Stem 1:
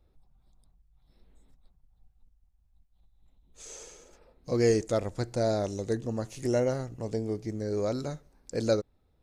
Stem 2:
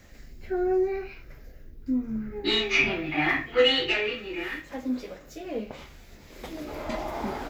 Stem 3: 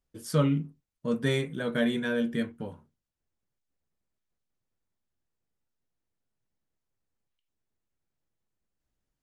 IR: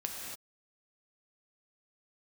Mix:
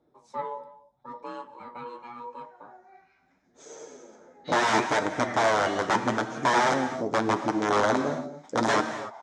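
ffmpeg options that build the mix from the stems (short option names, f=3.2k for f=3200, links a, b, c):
-filter_complex "[0:a]equalizer=f=290:w=1:g=10,aeval=exprs='(mod(8.41*val(0)+1,2)-1)/8.41':c=same,volume=0dB,asplit=2[a][b];[b]volume=-3.5dB[c];[1:a]lowshelf=f=550:t=q:w=1.5:g=-13.5,crystalizer=i=2:c=0,adelay=2000,volume=-15.5dB,asplit=2[d][e];[e]volume=-8dB[f];[2:a]bandreject=f=60:t=h:w=6,bandreject=f=120:t=h:w=6,bandreject=f=180:t=h:w=6,bandreject=f=240:t=h:w=6,aeval=exprs='val(0)*sin(2*PI*720*n/s)':c=same,volume=-8dB,asplit=3[g][h][i];[h]volume=-15.5dB[j];[i]apad=whole_len=418564[k];[d][k]sidechaincompress=threshold=-48dB:ratio=8:attack=16:release=1280[l];[3:a]atrim=start_sample=2205[m];[c][f][j]amix=inputs=3:normalize=0[n];[n][m]afir=irnorm=-1:irlink=0[o];[a][l][g][o]amix=inputs=4:normalize=0,equalizer=f=760:w=4.1:g=3,flanger=delay=6.4:depth=5.8:regen=45:speed=0.79:shape=sinusoidal,highpass=170,equalizer=f=630:t=q:w=4:g=4,equalizer=f=920:t=q:w=4:g=5,equalizer=f=1.5k:t=q:w=4:g=4,equalizer=f=2.7k:t=q:w=4:g=-10,equalizer=f=4.5k:t=q:w=4:g=-8,lowpass=f=6.3k:w=0.5412,lowpass=f=6.3k:w=1.3066"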